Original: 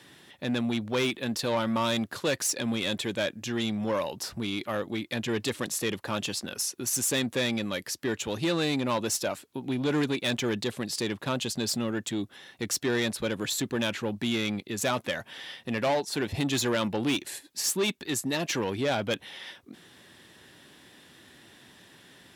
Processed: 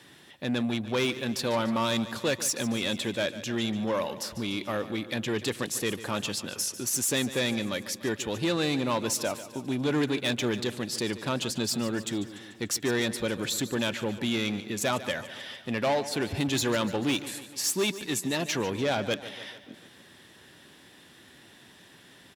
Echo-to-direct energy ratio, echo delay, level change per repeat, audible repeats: −12.5 dB, 146 ms, −4.5 dB, 5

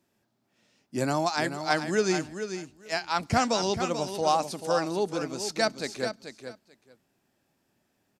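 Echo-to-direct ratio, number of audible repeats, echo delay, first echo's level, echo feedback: −9.0 dB, 2, 437 ms, −9.0 dB, 15%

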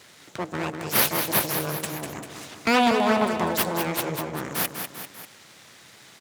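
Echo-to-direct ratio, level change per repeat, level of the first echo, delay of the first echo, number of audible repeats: −5.5 dB, −5.0 dB, −7.0 dB, 197 ms, 3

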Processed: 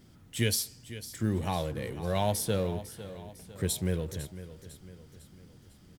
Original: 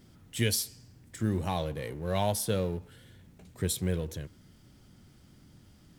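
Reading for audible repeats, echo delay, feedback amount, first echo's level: 4, 502 ms, 47%, −14.0 dB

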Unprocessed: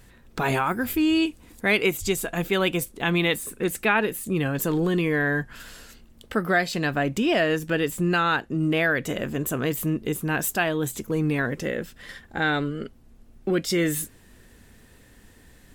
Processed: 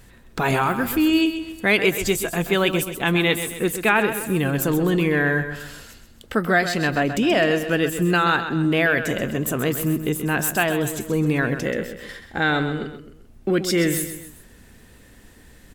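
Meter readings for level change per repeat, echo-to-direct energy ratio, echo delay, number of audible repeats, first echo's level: −7.0 dB, −9.0 dB, 130 ms, 3, −10.0 dB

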